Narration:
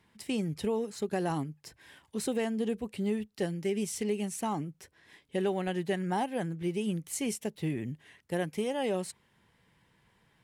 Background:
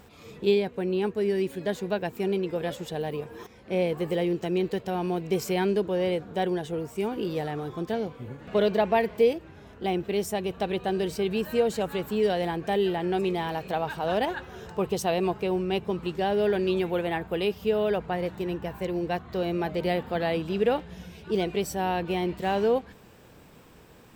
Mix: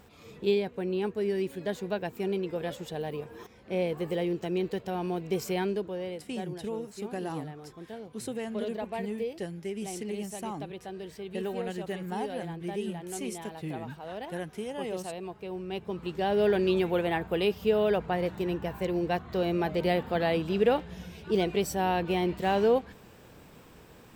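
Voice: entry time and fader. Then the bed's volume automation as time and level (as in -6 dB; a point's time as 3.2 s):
6.00 s, -4.5 dB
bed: 5.56 s -3.5 dB
6.3 s -13 dB
15.31 s -13 dB
16.43 s 0 dB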